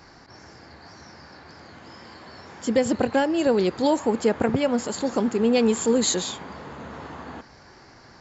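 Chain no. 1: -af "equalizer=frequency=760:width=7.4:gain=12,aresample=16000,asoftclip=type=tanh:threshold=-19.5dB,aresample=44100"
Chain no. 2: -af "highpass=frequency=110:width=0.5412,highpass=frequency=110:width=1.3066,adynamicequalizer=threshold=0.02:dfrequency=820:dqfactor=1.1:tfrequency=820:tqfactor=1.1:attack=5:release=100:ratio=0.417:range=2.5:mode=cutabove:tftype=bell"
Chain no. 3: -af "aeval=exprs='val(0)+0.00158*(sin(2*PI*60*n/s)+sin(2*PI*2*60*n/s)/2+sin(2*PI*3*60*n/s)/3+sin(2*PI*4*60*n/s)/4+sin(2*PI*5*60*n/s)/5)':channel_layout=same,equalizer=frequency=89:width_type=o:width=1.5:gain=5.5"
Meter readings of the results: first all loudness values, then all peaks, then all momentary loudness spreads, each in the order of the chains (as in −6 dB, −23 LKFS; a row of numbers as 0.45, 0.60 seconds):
−27.0, −23.5, −22.0 LKFS; −16.0, −9.0, −8.5 dBFS; 20, 18, 18 LU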